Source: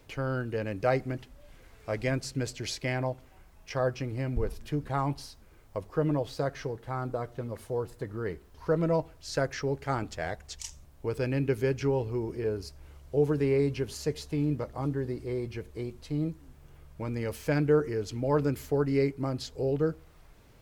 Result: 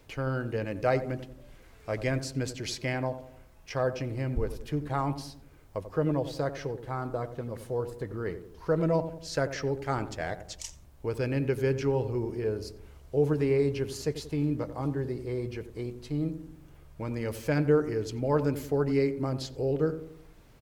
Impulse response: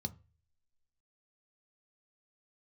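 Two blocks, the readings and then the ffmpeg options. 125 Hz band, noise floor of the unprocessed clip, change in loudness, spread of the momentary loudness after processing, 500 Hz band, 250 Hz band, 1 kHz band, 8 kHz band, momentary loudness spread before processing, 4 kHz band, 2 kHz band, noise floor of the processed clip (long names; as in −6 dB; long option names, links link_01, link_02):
+0.5 dB, −56 dBFS, +0.5 dB, 12 LU, +0.5 dB, +0.5 dB, 0.0 dB, 0.0 dB, 12 LU, 0.0 dB, 0.0 dB, −54 dBFS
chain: -filter_complex "[0:a]asplit=2[link_01][link_02];[link_02]adelay=90,lowpass=frequency=820:poles=1,volume=-9.5dB,asplit=2[link_03][link_04];[link_04]adelay=90,lowpass=frequency=820:poles=1,volume=0.53,asplit=2[link_05][link_06];[link_06]adelay=90,lowpass=frequency=820:poles=1,volume=0.53,asplit=2[link_07][link_08];[link_08]adelay=90,lowpass=frequency=820:poles=1,volume=0.53,asplit=2[link_09][link_10];[link_10]adelay=90,lowpass=frequency=820:poles=1,volume=0.53,asplit=2[link_11][link_12];[link_12]adelay=90,lowpass=frequency=820:poles=1,volume=0.53[link_13];[link_01][link_03][link_05][link_07][link_09][link_11][link_13]amix=inputs=7:normalize=0"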